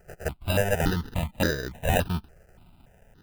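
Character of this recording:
aliases and images of a low sample rate 1,100 Hz, jitter 0%
notches that jump at a steady rate 3.5 Hz 1,000–2,700 Hz

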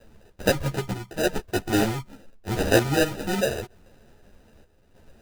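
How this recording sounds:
aliases and images of a low sample rate 1,100 Hz, jitter 0%
chopped level 0.81 Hz, depth 60%, duty 75%
a shimmering, thickened sound

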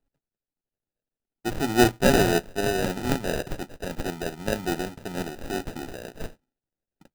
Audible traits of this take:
a buzz of ramps at a fixed pitch in blocks of 8 samples
tremolo triangle 1.8 Hz, depth 45%
aliases and images of a low sample rate 1,100 Hz, jitter 0%

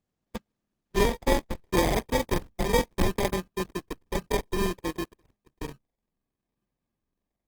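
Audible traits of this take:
a buzz of ramps at a fixed pitch in blocks of 32 samples
phaser sweep stages 6, 0.64 Hz, lowest notch 440–1,400 Hz
aliases and images of a low sample rate 1,400 Hz, jitter 0%
Opus

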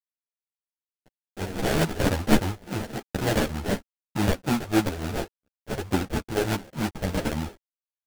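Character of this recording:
a quantiser's noise floor 8 bits, dither none
phaser sweep stages 2, 3.4 Hz, lowest notch 180–1,600 Hz
aliases and images of a low sample rate 1,100 Hz, jitter 20%
a shimmering, thickened sound

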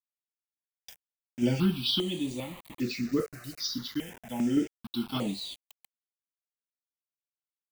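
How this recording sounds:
sample-and-hold tremolo, depth 75%
a quantiser's noise floor 8 bits, dither none
notches that jump at a steady rate 2.5 Hz 910–5,300 Hz

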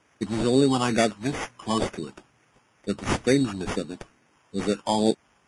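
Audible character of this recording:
a quantiser's noise floor 12 bits, dither triangular
phaser sweep stages 6, 2.2 Hz, lowest notch 440–1,000 Hz
aliases and images of a low sample rate 4,100 Hz, jitter 0%
Ogg Vorbis

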